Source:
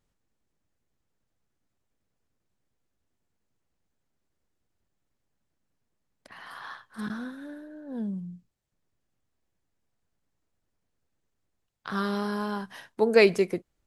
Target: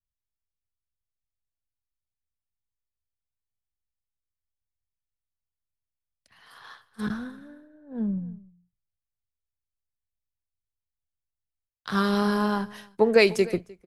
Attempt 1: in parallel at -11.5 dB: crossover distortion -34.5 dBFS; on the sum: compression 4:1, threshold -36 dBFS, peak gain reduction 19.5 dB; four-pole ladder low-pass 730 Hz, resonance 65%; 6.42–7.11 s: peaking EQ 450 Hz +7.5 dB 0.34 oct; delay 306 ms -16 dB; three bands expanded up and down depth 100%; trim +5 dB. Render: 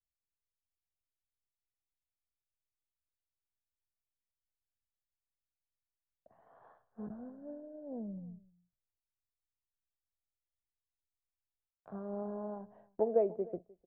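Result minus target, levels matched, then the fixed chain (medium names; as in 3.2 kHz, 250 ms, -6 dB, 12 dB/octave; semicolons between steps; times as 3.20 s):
compression: peak gain reduction +8 dB; 1 kHz band -2.0 dB
in parallel at -11.5 dB: crossover distortion -34.5 dBFS; on the sum: compression 4:1, threshold -25.5 dBFS, peak gain reduction 12 dB; 6.42–7.11 s: peaking EQ 450 Hz +7.5 dB 0.34 oct; delay 306 ms -16 dB; three bands expanded up and down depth 100%; trim +5 dB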